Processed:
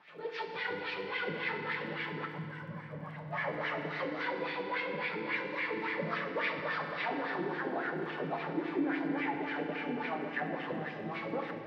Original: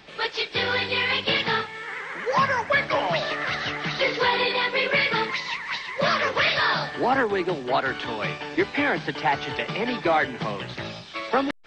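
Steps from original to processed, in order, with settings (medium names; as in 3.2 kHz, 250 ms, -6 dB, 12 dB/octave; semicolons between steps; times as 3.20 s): backward echo that repeats 322 ms, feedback 62%, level -2 dB; bass shelf 330 Hz +4 dB; time-frequency box 2.26–3.33 s, 200–7600 Hz -16 dB; peaking EQ 170 Hz +11 dB 0.31 oct; compression, threshold -22 dBFS, peak gain reduction 9 dB; wah-wah 3.6 Hz 270–2100 Hz, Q 2.3; FDN reverb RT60 2.1 s, low-frequency decay 1.55×, high-frequency decay 0.95×, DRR 3.5 dB; crackle 25 per s -53 dBFS; trim -4.5 dB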